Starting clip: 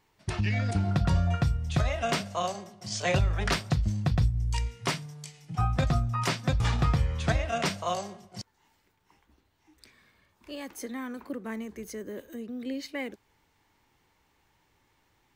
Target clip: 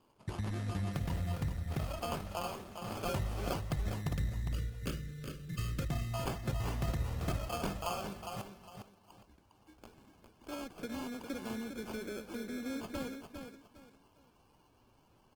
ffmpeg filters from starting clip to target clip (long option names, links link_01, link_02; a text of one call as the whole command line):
ffmpeg -i in.wav -filter_complex "[0:a]asplit=3[link_01][link_02][link_03];[link_01]afade=type=out:start_time=10.53:duration=0.02[link_04];[link_02]lowpass=4600,afade=type=in:start_time=10.53:duration=0.02,afade=type=out:start_time=11.47:duration=0.02[link_05];[link_03]afade=type=in:start_time=11.47:duration=0.02[link_06];[link_04][link_05][link_06]amix=inputs=3:normalize=0,acompressor=threshold=-43dB:ratio=2,acrusher=samples=23:mix=1:aa=0.000001,asplit=3[link_07][link_08][link_09];[link_07]afade=type=out:start_time=4.14:duration=0.02[link_10];[link_08]asuperstop=centerf=830:order=8:qfactor=1.2,afade=type=in:start_time=4.14:duration=0.02,afade=type=out:start_time=5.89:duration=0.02[link_11];[link_09]afade=type=in:start_time=5.89:duration=0.02[link_12];[link_10][link_11][link_12]amix=inputs=3:normalize=0,aecho=1:1:406|812|1218:0.447|0.121|0.0326,volume=1dB" -ar 48000 -c:a libopus -b:a 16k out.opus